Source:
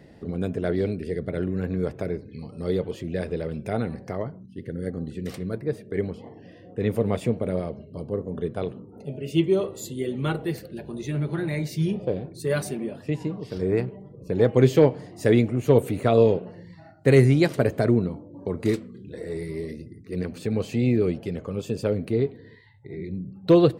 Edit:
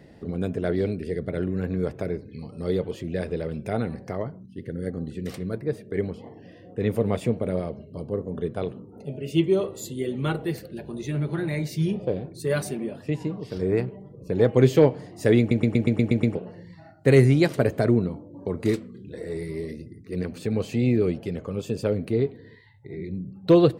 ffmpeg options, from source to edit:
-filter_complex "[0:a]asplit=9[a][b][c][d][e][f][g][h][i];[a]atrim=end=15.512[j];[b]atrim=start=15.388:end=15.512[k];[c]atrim=start=15.388:end=15.512[l];[d]atrim=start=15.388:end=15.512[m];[e]atrim=start=15.388:end=15.512[n];[f]atrim=start=15.388:end=15.512[o];[g]atrim=start=15.388:end=15.512[p];[h]atrim=start=15.388:end=15.512[q];[i]atrim=start=16.348[r];[j][k]acrossfade=d=0.004:c1=hsin:c2=hsin[s];[s][l]acrossfade=d=0.004:c1=hsin:c2=hsin[t];[t][m]acrossfade=d=0.004:c1=hsin:c2=hsin[u];[u][n]acrossfade=d=0.004:c1=hsin:c2=hsin[v];[v][o]acrossfade=d=0.004:c1=hsin:c2=hsin[w];[w][p]acrossfade=d=0.004:c1=hsin:c2=hsin[x];[x][q]acrossfade=d=0.004:c1=hsin:c2=hsin[y];[y][r]acrossfade=d=0.004:c1=hsin:c2=hsin"

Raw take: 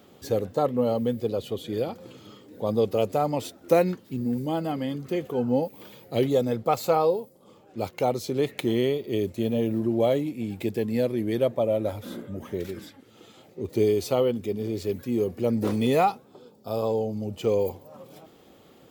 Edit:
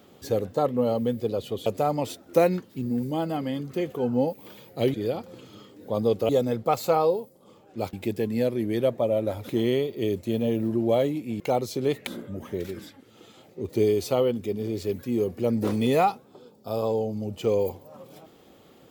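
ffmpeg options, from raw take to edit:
-filter_complex "[0:a]asplit=8[a][b][c][d][e][f][g][h];[a]atrim=end=1.662[i];[b]atrim=start=3.008:end=6.292[j];[c]atrim=start=1.658:end=3.012[k];[d]atrim=start=6.288:end=7.932[l];[e]atrim=start=10.508:end=12.072[m];[f]atrim=start=8.598:end=10.512[n];[g]atrim=start=7.928:end=8.602[o];[h]atrim=start=12.068[p];[i][j]acrossfade=d=0.004:c1=hsin:c2=hsin[q];[q][k]acrossfade=d=0.004:c1=hsin:c2=hsin[r];[r][l]acrossfade=d=0.004:c1=hsin:c2=hsin[s];[s][m]acrossfade=d=0.004:c1=hsin:c2=hsin[t];[t][n]acrossfade=d=0.004:c1=hsin:c2=hsin[u];[u][o]acrossfade=d=0.004:c1=hsin:c2=hsin[v];[v][p]acrossfade=d=0.004:c1=hsin:c2=hsin"

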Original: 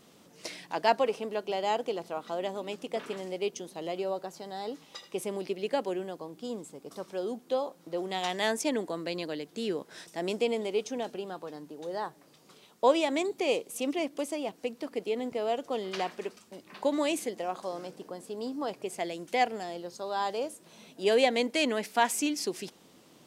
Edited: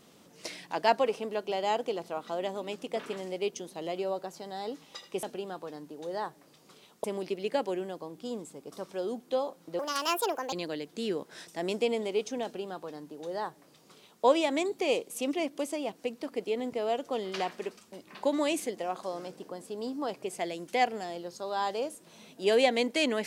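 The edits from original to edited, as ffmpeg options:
-filter_complex "[0:a]asplit=5[a][b][c][d][e];[a]atrim=end=5.232[f];[b]atrim=start=11.028:end=12.842[g];[c]atrim=start=5.228:end=7.984[h];[d]atrim=start=7.98:end=9.12,asetpts=PTS-STARTPTS,asetrate=68355,aresample=44100[i];[e]atrim=start=9.116[j];[f][g]acrossfade=d=0.004:c1=hsin:c2=hsin[k];[k][h]acrossfade=d=0.004:c1=hsin:c2=hsin[l];[l][i]acrossfade=d=0.004:c1=hsin:c2=hsin[m];[m][j]acrossfade=d=0.004:c1=hsin:c2=hsin"

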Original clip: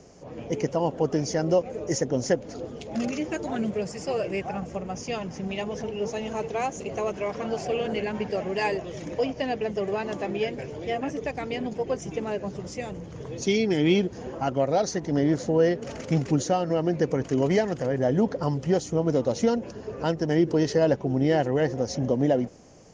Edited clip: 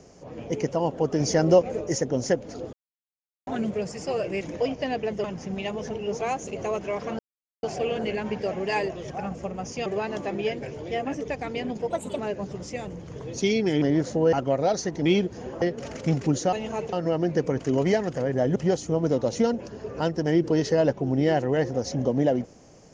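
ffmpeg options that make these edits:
-filter_complex "[0:a]asplit=20[a][b][c][d][e][f][g][h][i][j][k][l][m][n][o][p][q][r][s][t];[a]atrim=end=1.202[u];[b]atrim=start=1.198:end=1.812,asetpts=PTS-STARTPTS,volume=4.5dB[v];[c]atrim=start=1.808:end=2.73,asetpts=PTS-STARTPTS,afade=t=out:st=0.918:d=0.004:c=hsin[w];[d]atrim=start=2.73:end=3.47,asetpts=PTS-STARTPTS,volume=0[x];[e]atrim=start=3.47:end=4.412,asetpts=PTS-STARTPTS,afade=t=in:d=0.004:c=hsin[y];[f]atrim=start=8.988:end=9.822[z];[g]atrim=start=5.168:end=6.142[aa];[h]atrim=start=6.538:end=7.52,asetpts=PTS-STARTPTS,afade=t=out:st=0.978:d=0.004:c=hsin,apad=pad_dur=0.44[ab];[i]atrim=start=7.52:end=8.992,asetpts=PTS-STARTPTS,afade=t=in:d=0.004:c=hsin[ac];[j]atrim=start=4.408:end=5.172[ad];[k]atrim=start=9.818:end=11.864[ae];[l]atrim=start=11.86:end=12.23,asetpts=PTS-STARTPTS,asetrate=56889,aresample=44100[af];[m]atrim=start=12.226:end=13.862[ag];[n]atrim=start=15.148:end=15.662[ah];[o]atrim=start=14.418:end=15.152[ai];[p]atrim=start=13.858:end=14.422[aj];[q]atrim=start=15.658:end=16.572[ak];[r]atrim=start=6.138:end=6.542[al];[s]atrim=start=16.568:end=18.202[am];[t]atrim=start=18.588[an];[u][v]acrossfade=d=0.004:c1=hsin:c2=hsin[ao];[w][x][y]concat=n=3:v=0:a=1[ap];[ao][ap]acrossfade=d=0.004:c1=hsin:c2=hsin[aq];[aq][z]acrossfade=d=0.004:c1=hsin:c2=hsin[ar];[ar][aa]acrossfade=d=0.004:c1=hsin:c2=hsin[as];[ab][ac]concat=n=2:v=0:a=1[at];[as][at]acrossfade=d=0.004:c1=hsin:c2=hsin[au];[au][ad]acrossfade=d=0.004:c1=hsin:c2=hsin[av];[av][ae]acrossfade=d=0.004:c1=hsin:c2=hsin[aw];[aw][af]acrossfade=d=0.004:c1=hsin:c2=hsin[ax];[ax][ag]acrossfade=d=0.004:c1=hsin:c2=hsin[ay];[ay][ah]acrossfade=d=0.004:c1=hsin:c2=hsin[az];[az][ai]acrossfade=d=0.004:c1=hsin:c2=hsin[ba];[ba][aj]acrossfade=d=0.004:c1=hsin:c2=hsin[bb];[bb][ak]acrossfade=d=0.004:c1=hsin:c2=hsin[bc];[bc][al]acrossfade=d=0.004:c1=hsin:c2=hsin[bd];[bd][am]acrossfade=d=0.004:c1=hsin:c2=hsin[be];[be][an]acrossfade=d=0.004:c1=hsin:c2=hsin"

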